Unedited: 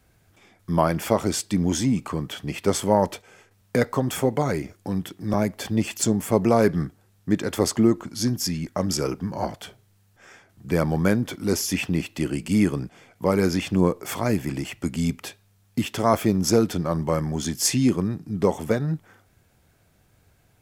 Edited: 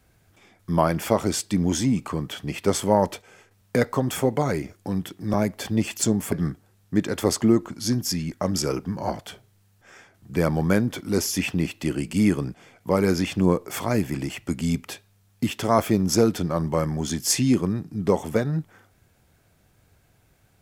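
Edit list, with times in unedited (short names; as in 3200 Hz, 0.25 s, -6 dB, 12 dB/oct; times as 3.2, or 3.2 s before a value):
6.32–6.67 cut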